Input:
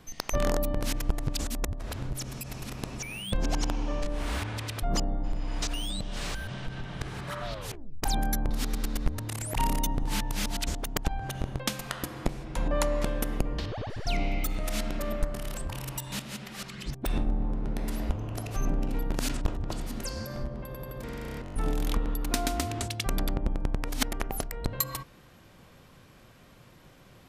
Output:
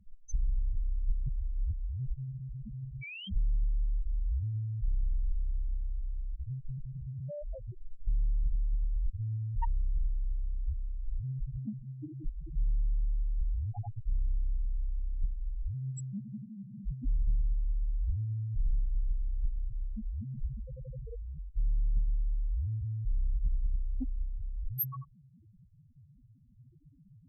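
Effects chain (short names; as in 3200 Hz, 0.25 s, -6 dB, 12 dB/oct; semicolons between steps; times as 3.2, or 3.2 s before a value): loudest bins only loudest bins 1; added harmonics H 2 -18 dB, 4 -31 dB, 5 -22 dB, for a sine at -23 dBFS; gain +4.5 dB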